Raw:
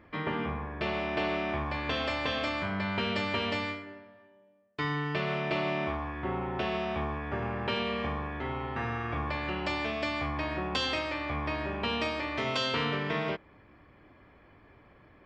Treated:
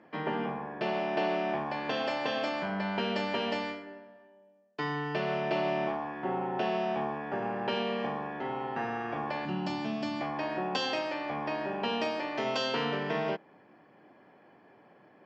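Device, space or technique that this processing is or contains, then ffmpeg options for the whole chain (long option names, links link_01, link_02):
television speaker: -filter_complex "[0:a]asettb=1/sr,asplit=3[link_01][link_02][link_03];[link_01]atrim=end=9.454[link_04];[link_02]atrim=start=9.45:end=10.21,asetpts=PTS-STARTPTS,afade=type=in:duration=0.004:curve=qsin,afade=type=out:start_time=0.756:duration=0.004:curve=qsin,equalizer=frequency=125:width_type=o:width=1:gain=10,equalizer=frequency=250:width_type=o:width=1:gain=7,equalizer=frequency=500:width_type=o:width=1:gain=-11,equalizer=frequency=2000:width_type=o:width=1:gain=-7[link_05];[link_03]atrim=start=10.206[link_06];[link_04][link_05]acrossfade=duration=0.004:curve1=hsin:curve2=qsin[link_07];[link_07][link_06]acrossfade=duration=0.004:curve1=qsin:curve2=hsin,highpass=frequency=170:width=0.5412,highpass=frequency=170:width=1.3066,equalizer=frequency=280:width_type=q:width=4:gain=-3,equalizer=frequency=780:width_type=q:width=4:gain=5,equalizer=frequency=1200:width_type=q:width=4:gain=-7,equalizer=frequency=2200:width_type=q:width=4:gain=-8,equalizer=frequency=3700:width_type=q:width=4:gain=-8,lowpass=frequency=6700:width=0.5412,lowpass=frequency=6700:width=1.3066,volume=1.5dB"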